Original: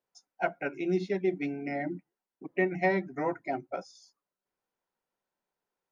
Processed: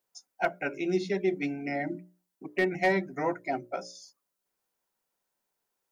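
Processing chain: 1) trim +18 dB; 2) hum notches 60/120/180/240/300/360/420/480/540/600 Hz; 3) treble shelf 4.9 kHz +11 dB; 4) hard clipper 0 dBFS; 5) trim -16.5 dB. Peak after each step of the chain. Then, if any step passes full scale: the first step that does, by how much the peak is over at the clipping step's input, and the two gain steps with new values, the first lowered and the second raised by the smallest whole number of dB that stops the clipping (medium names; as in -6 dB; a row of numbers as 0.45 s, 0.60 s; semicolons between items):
+5.5 dBFS, +4.5 dBFS, +5.5 dBFS, 0.0 dBFS, -16.5 dBFS; step 1, 5.5 dB; step 1 +12 dB, step 5 -10.5 dB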